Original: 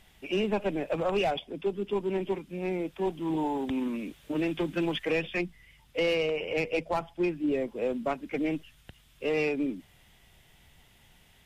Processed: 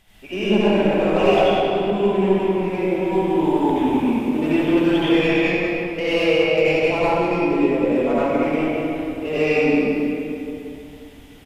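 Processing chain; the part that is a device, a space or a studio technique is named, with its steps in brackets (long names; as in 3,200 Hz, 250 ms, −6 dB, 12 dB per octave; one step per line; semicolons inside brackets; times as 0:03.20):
cave (single-tap delay 187 ms −8 dB; convolution reverb RT60 2.8 s, pre-delay 66 ms, DRR −10.5 dB)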